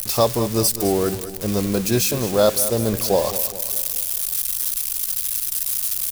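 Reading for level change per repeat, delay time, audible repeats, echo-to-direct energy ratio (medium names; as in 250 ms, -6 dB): -6.0 dB, 207 ms, 4, -11.5 dB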